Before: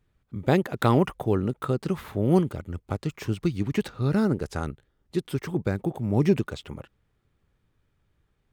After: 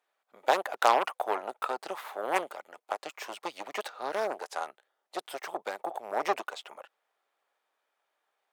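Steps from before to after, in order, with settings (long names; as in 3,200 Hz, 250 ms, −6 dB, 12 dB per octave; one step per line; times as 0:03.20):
harmonic generator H 6 −14 dB, 8 −13 dB, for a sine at −6.5 dBFS
four-pole ladder high-pass 590 Hz, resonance 45%
level +7.5 dB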